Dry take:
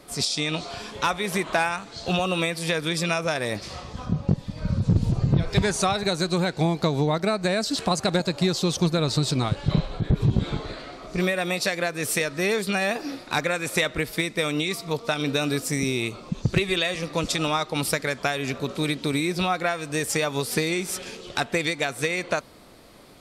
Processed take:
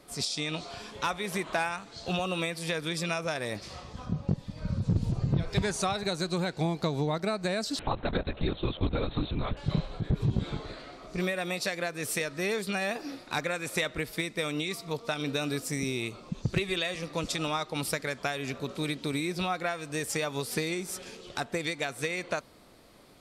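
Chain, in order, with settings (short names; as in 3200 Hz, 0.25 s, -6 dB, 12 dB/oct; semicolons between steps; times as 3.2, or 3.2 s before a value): 7.79–9.57 LPC vocoder at 8 kHz whisper; 20.74–21.63 dynamic EQ 2700 Hz, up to -5 dB, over -40 dBFS, Q 1.1; gain -6.5 dB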